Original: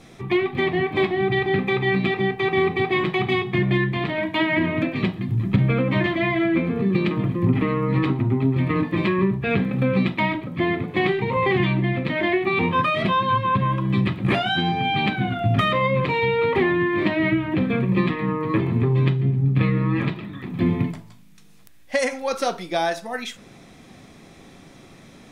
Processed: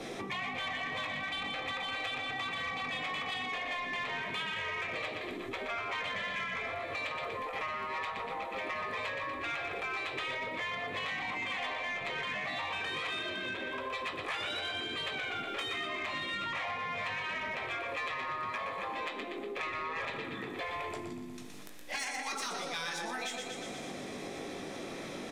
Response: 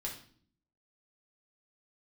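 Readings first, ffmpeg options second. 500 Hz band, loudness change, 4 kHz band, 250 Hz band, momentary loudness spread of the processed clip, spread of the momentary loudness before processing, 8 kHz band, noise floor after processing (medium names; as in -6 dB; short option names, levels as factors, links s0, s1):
-18.0 dB, -14.0 dB, -6.0 dB, -24.5 dB, 5 LU, 5 LU, no reading, -42 dBFS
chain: -filter_complex "[0:a]acrossover=split=160|630|4700[s0][s1][s2][s3];[s1]equalizer=f=500:t=o:w=2.5:g=9.5[s4];[s0][s4][s2][s3]amix=inputs=4:normalize=0,aecho=1:1:120|240|360|480|600|720:0.398|0.203|0.104|0.0528|0.0269|0.0137,afftfilt=real='re*lt(hypot(re,im),0.282)':imag='im*lt(hypot(re,im),0.282)':win_size=1024:overlap=0.75,asplit=2[s5][s6];[s6]adelay=20,volume=0.376[s7];[s5][s7]amix=inputs=2:normalize=0,adynamicequalizer=threshold=0.00141:dfrequency=7500:dqfactor=1.8:tfrequency=7500:tqfactor=1.8:attack=5:release=100:ratio=0.375:range=3.5:mode=boostabove:tftype=bell,acompressor=threshold=0.0112:ratio=6,aresample=32000,aresample=44100,asplit=2[s8][s9];[s9]highpass=f=720:p=1,volume=3.98,asoftclip=type=tanh:threshold=0.0473[s10];[s8][s10]amix=inputs=2:normalize=0,lowpass=f=7800:p=1,volume=0.501"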